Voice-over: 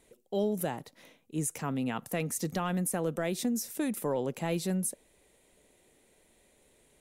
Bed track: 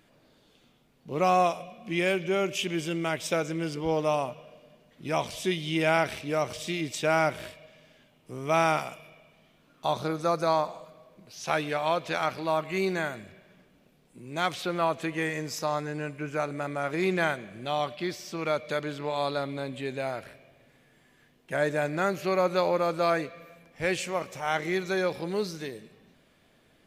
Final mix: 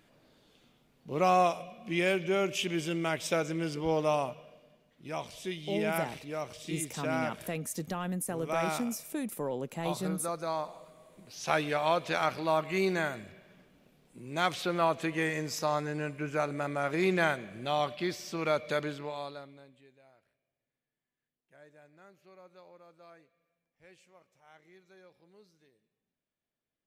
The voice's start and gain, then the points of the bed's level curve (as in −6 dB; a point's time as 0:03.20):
5.35 s, −3.5 dB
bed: 0:04.28 −2 dB
0:04.99 −9 dB
0:10.53 −9 dB
0:11.19 −1 dB
0:18.84 −1 dB
0:19.99 −30 dB